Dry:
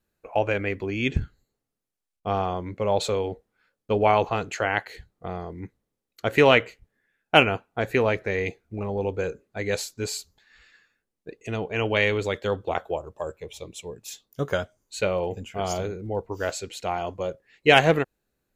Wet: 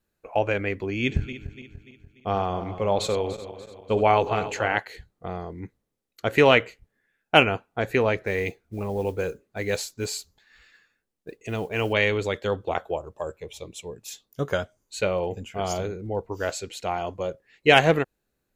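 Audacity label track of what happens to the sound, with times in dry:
0.890000	4.800000	feedback delay that plays each chunk backwards 146 ms, feedback 67%, level −12 dB
8.230000	11.930000	noise that follows the level under the signal 30 dB

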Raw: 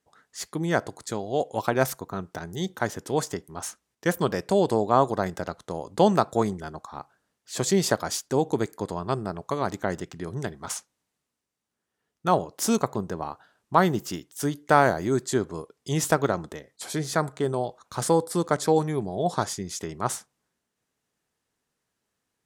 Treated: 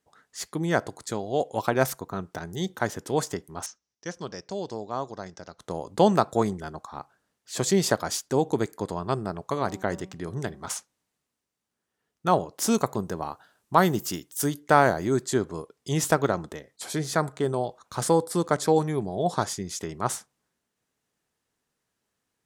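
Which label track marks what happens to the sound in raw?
3.660000	5.590000	transistor ladder low-pass 6,200 Hz, resonance 70%
9.480000	10.740000	hum removal 189.5 Hz, notches 6
12.770000	14.600000	high-shelf EQ 7,400 Hz +10 dB

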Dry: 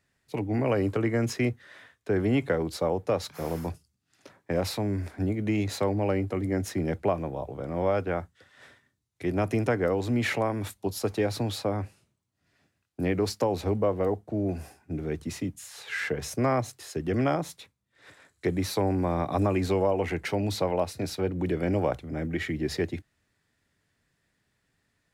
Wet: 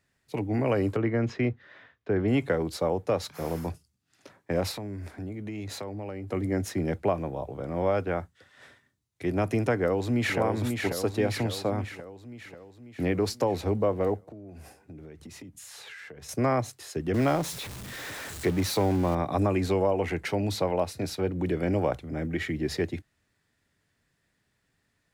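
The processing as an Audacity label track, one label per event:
0.960000	2.280000	high-frequency loss of the air 200 metres
4.710000	6.290000	downward compressor 4 to 1, threshold −34 dBFS
9.750000	10.380000	delay throw 540 ms, feedback 60%, level −4.5 dB
14.230000	16.290000	downward compressor 10 to 1, threshold −41 dBFS
17.140000	19.150000	converter with a step at zero of −33.5 dBFS

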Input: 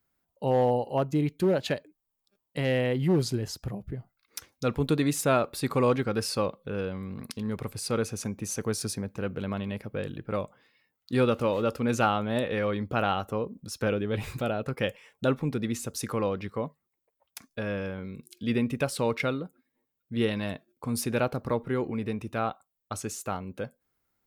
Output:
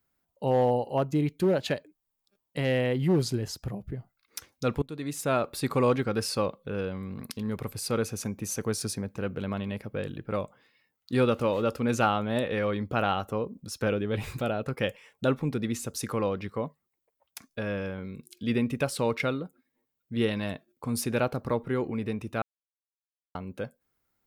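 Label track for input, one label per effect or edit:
4.820000	5.530000	fade in, from −23.5 dB
7.130000	8.580000	parametric band 13,000 Hz +7 dB 0.2 octaves
22.420000	23.350000	silence

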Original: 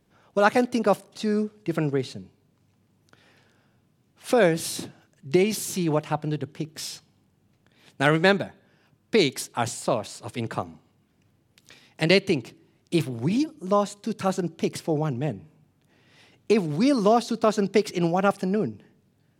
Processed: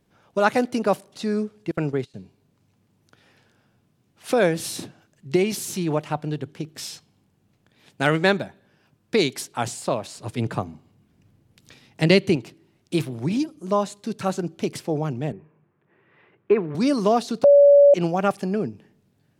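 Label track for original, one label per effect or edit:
1.710000	2.140000	noise gate −32 dBFS, range −22 dB
10.170000	12.360000	low-shelf EQ 290 Hz +7.5 dB
15.320000	16.750000	loudspeaker in its box 150–2,300 Hz, peaks and dips at 260 Hz −10 dB, 370 Hz +7 dB, 740 Hz −4 dB, 1,100 Hz +6 dB, 1,700 Hz +3 dB
17.440000	17.940000	beep over 570 Hz −8.5 dBFS

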